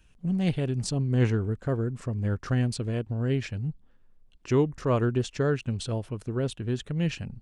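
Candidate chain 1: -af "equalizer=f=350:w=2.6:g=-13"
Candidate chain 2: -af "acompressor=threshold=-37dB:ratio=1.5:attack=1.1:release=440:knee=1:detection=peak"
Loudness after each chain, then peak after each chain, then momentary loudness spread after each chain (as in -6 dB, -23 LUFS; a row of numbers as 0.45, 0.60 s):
-30.0, -34.5 LUFS; -14.0, -20.0 dBFS; 7, 6 LU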